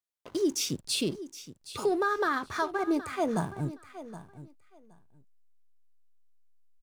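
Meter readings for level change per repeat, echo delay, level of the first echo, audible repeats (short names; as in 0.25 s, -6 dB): -15.5 dB, 0.769 s, -14.5 dB, 2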